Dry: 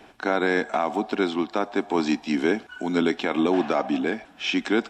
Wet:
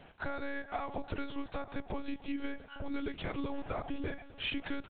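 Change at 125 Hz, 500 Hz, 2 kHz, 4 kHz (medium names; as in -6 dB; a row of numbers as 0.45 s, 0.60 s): -7.0 dB, -17.5 dB, -14.0 dB, -11.5 dB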